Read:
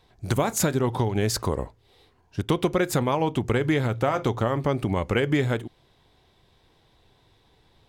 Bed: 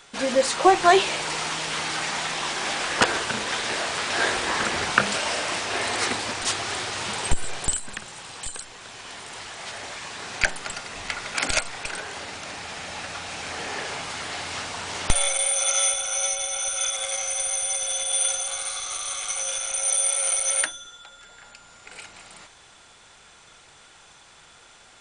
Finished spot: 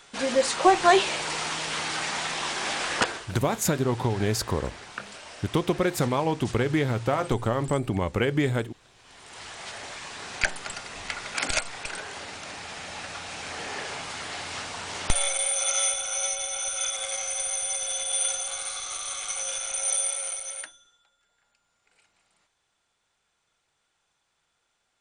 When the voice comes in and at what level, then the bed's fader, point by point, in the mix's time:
3.05 s, -1.5 dB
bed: 2.96 s -2 dB
3.32 s -17.5 dB
8.95 s -17.5 dB
9.45 s -3 dB
19.96 s -3 dB
21.17 s -23.5 dB

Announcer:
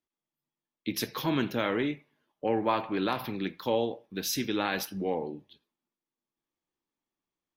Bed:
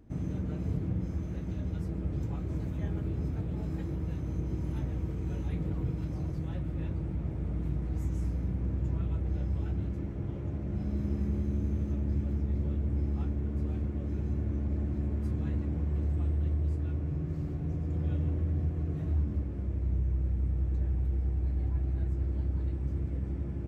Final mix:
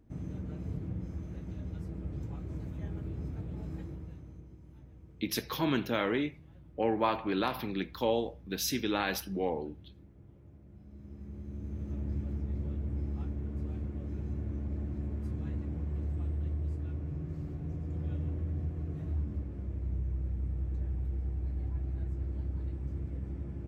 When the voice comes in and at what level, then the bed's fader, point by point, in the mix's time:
4.35 s, -1.5 dB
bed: 3.78 s -5.5 dB
4.59 s -20 dB
10.84 s -20 dB
12 s -4.5 dB

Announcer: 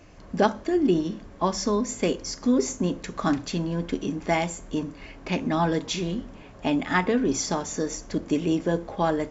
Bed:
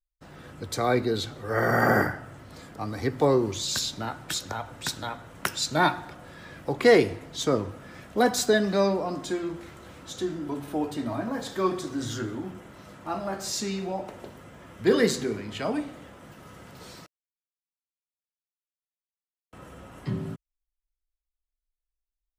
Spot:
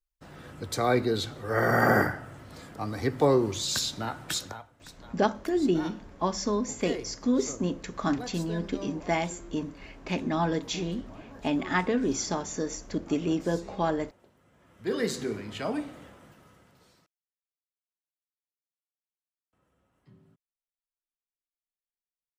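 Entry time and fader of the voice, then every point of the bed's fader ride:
4.80 s, -3.5 dB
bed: 4.43 s -0.5 dB
4.72 s -18.5 dB
14.36 s -18.5 dB
15.28 s -2.5 dB
16.05 s -2.5 dB
17.46 s -27 dB

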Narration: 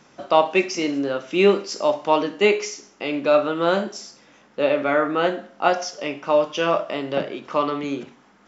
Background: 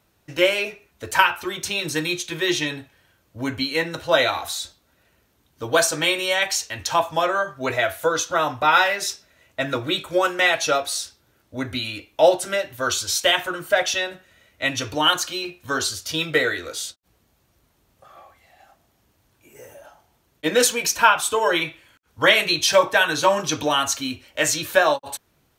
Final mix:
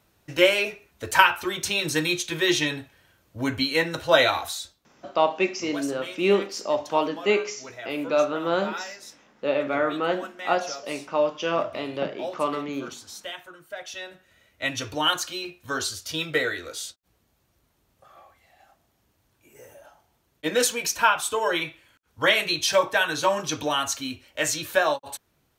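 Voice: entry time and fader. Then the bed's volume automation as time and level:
4.85 s, -4.5 dB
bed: 4.35 s 0 dB
5.23 s -18 dB
13.78 s -18 dB
14.32 s -4.5 dB

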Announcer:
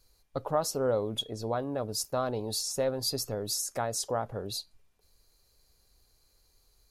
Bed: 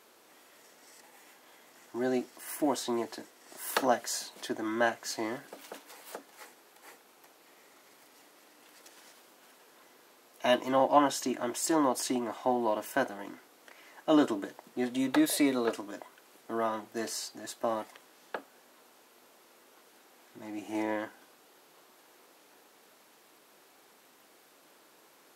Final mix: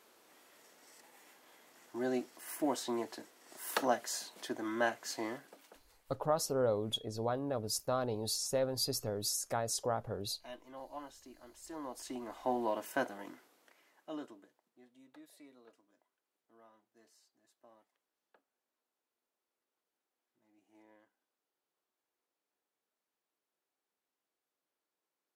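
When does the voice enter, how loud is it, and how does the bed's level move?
5.75 s, -3.5 dB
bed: 5.29 s -4.5 dB
6.12 s -23 dB
11.5 s -23 dB
12.52 s -5 dB
13.28 s -5 dB
14.89 s -31.5 dB

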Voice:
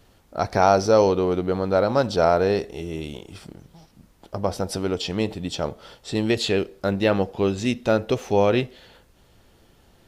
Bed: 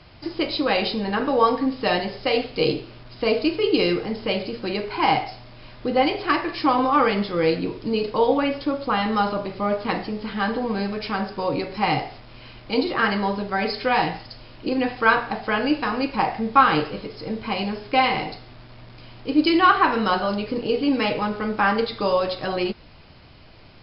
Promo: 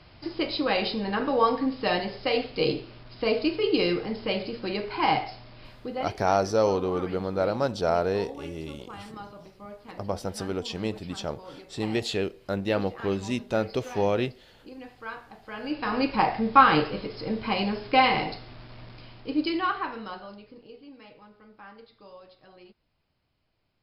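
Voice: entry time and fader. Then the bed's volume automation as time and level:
5.65 s, -6.0 dB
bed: 5.66 s -4 dB
6.25 s -20.5 dB
15.4 s -20.5 dB
15.97 s -1 dB
18.87 s -1 dB
20.92 s -27.5 dB

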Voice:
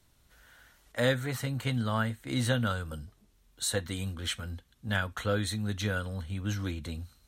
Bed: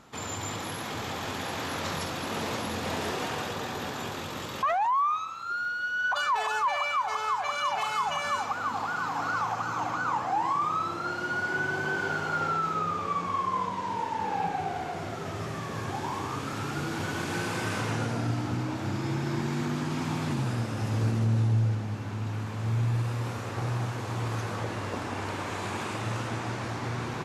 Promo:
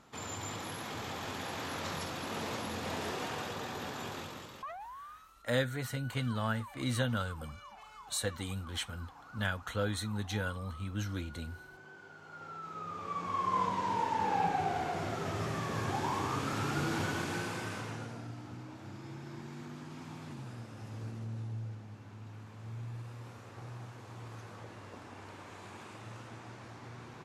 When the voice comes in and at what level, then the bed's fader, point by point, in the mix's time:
4.50 s, -4.0 dB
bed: 4.2 s -6 dB
4.98 s -23.5 dB
12.14 s -23.5 dB
13.61 s -1 dB
16.96 s -1 dB
18.31 s -15.5 dB

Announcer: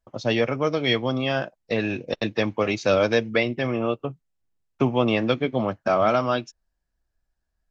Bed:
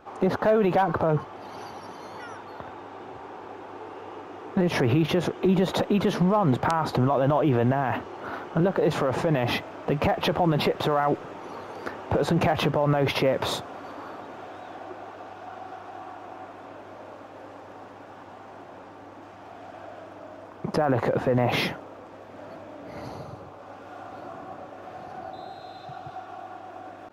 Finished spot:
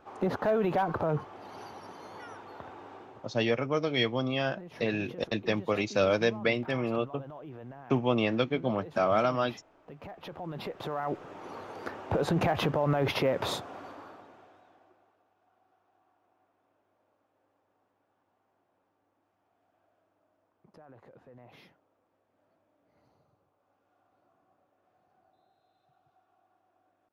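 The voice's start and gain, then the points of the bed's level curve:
3.10 s, -5.5 dB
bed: 2.94 s -6 dB
3.63 s -23 dB
9.97 s -23 dB
11.47 s -4.5 dB
13.8 s -4.5 dB
15.25 s -31 dB

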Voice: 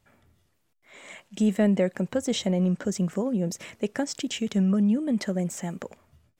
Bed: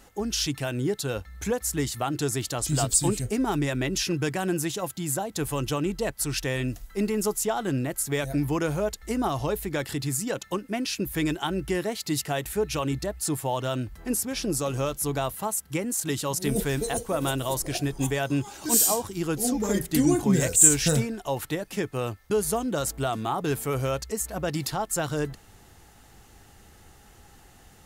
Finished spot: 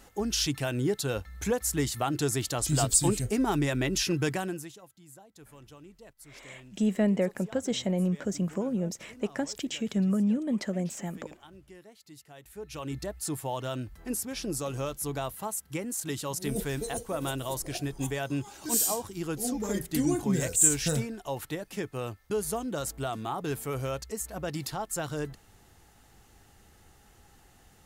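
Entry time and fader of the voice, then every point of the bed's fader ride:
5.40 s, -3.5 dB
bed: 4.34 s -1 dB
4.88 s -23.5 dB
12.29 s -23.5 dB
12.99 s -5.5 dB

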